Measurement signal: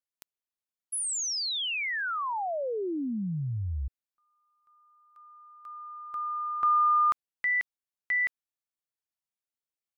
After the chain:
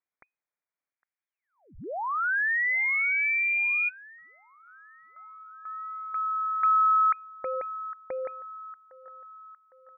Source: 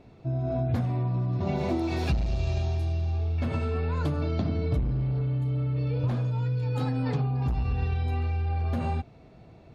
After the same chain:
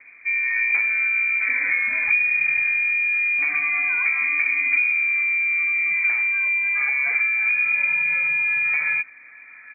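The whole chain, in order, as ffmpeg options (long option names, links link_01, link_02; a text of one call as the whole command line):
ffmpeg -i in.wav -filter_complex "[0:a]acrossover=split=290|660|1200[link_01][link_02][link_03][link_04];[link_03]aecho=1:1:808|1616|2424|3232|4040:0.282|0.141|0.0705|0.0352|0.0176[link_05];[link_04]acompressor=threshold=-41dB:ratio=6:attack=6.5:release=188:detection=rms[link_06];[link_01][link_02][link_05][link_06]amix=inputs=4:normalize=0,lowpass=frequency=2100:width_type=q:width=0.5098,lowpass=frequency=2100:width_type=q:width=0.6013,lowpass=frequency=2100:width_type=q:width=0.9,lowpass=frequency=2100:width_type=q:width=2.563,afreqshift=-2500,volume=5.5dB" out.wav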